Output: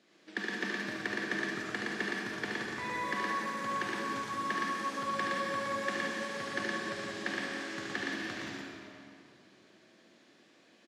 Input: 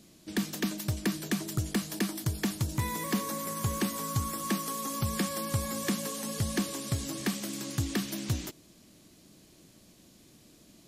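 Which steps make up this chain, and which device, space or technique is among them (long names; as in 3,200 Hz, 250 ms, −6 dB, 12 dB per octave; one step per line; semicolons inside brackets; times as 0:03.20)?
station announcement (band-pass filter 400–3,600 Hz; parametric band 1,700 Hz +8 dB 0.54 octaves; loudspeakers that aren't time-aligned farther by 25 metres −4 dB, 40 metres −2 dB; convolution reverb RT60 2.6 s, pre-delay 42 ms, DRR 0 dB)
level −5 dB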